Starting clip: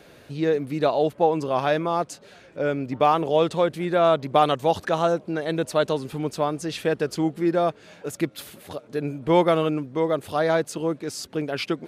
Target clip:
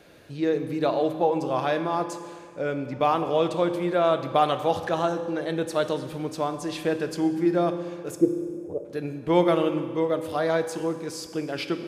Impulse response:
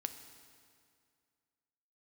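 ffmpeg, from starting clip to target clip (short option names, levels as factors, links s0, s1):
-filter_complex "[0:a]asettb=1/sr,asplit=3[s0][s1][s2];[s0]atrim=end=8.174[s3];[s1]atrim=start=8.17:end=8.85,asetpts=PTS-STARTPTS,afade=t=in:d=0.004:c=qsin,afade=t=out:st=0.676:d=0.004:c=qsin,lowpass=f=450:t=q:w=4.1[s4];[s2]atrim=start=8.846[s5];[s3][s4]acrossfade=d=0.004:c1=hsin:c2=qsin[s6];[s6][s5]acrossfade=d=0.004:c1=qsin:c2=hsin[s7];[1:a]atrim=start_sample=2205,asetrate=52920,aresample=44100[s8];[s7][s8]afir=irnorm=-1:irlink=0"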